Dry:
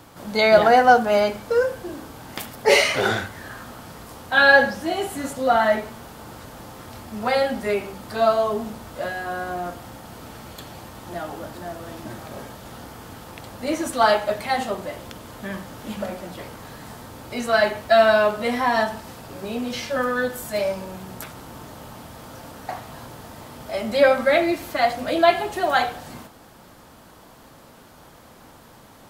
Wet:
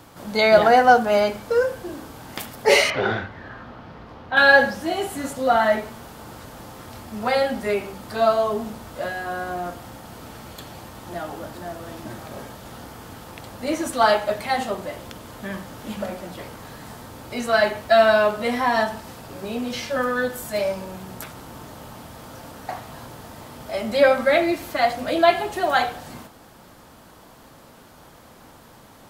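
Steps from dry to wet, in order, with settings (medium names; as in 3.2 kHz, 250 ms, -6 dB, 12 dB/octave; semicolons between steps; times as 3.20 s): 2.90–4.37 s: distance through air 270 m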